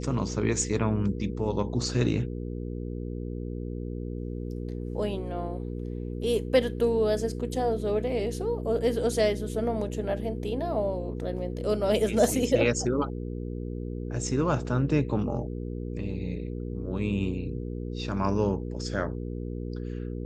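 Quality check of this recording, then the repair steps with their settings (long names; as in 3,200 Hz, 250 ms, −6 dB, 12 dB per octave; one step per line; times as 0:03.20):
mains hum 60 Hz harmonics 8 −34 dBFS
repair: hum removal 60 Hz, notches 8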